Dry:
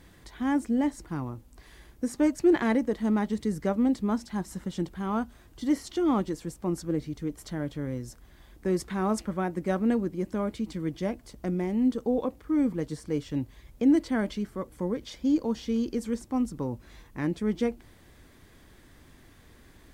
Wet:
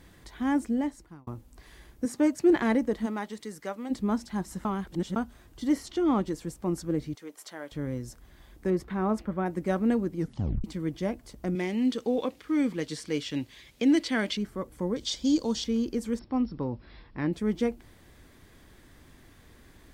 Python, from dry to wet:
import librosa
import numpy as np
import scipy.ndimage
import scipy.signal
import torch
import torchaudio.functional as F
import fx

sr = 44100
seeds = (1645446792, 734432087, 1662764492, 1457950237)

y = fx.highpass(x, sr, hz=110.0, slope=12, at=(2.05, 2.5))
y = fx.highpass(y, sr, hz=fx.line((3.05, 590.0), (3.9, 1300.0)), slope=6, at=(3.05, 3.9), fade=0.02)
y = fx.high_shelf(y, sr, hz=9800.0, db=-10.0, at=(5.86, 6.26))
y = fx.highpass(y, sr, hz=590.0, slope=12, at=(7.15, 7.72))
y = fx.peak_eq(y, sr, hz=8200.0, db=-13.5, octaves=2.1, at=(8.7, 9.46))
y = fx.weighting(y, sr, curve='D', at=(11.55, 14.37))
y = fx.band_shelf(y, sr, hz=5200.0, db=12.5, octaves=1.7, at=(14.96, 15.64))
y = fx.brickwall_lowpass(y, sr, high_hz=5600.0, at=(16.19, 17.33))
y = fx.edit(y, sr, fx.fade_out_span(start_s=0.63, length_s=0.64),
    fx.reverse_span(start_s=4.65, length_s=0.51),
    fx.tape_stop(start_s=10.17, length_s=0.47), tone=tone)